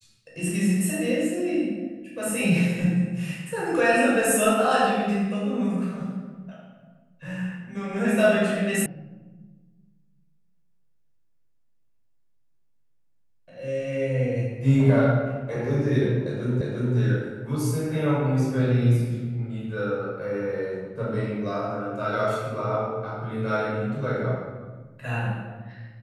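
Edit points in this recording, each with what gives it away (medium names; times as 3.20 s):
8.86 s: sound stops dead
16.61 s: repeat of the last 0.35 s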